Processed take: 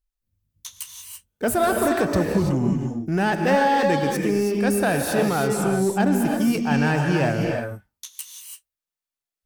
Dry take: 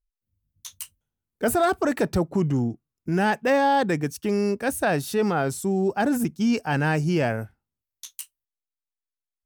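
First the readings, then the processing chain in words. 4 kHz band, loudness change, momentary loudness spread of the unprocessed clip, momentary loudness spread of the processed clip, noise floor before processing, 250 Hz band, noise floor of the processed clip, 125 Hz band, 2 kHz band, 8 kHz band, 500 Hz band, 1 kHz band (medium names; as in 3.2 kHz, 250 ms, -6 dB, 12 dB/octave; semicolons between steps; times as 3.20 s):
+3.0 dB, +2.5 dB, 18 LU, 16 LU, under -85 dBFS, +3.0 dB, under -85 dBFS, +3.0 dB, +2.5 dB, +4.0 dB, +2.5 dB, +2.0 dB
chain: in parallel at -6 dB: hard clipper -26.5 dBFS, distortion -7 dB; on the sum: gated-style reverb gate 360 ms rising, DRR 1.5 dB; trim -1.5 dB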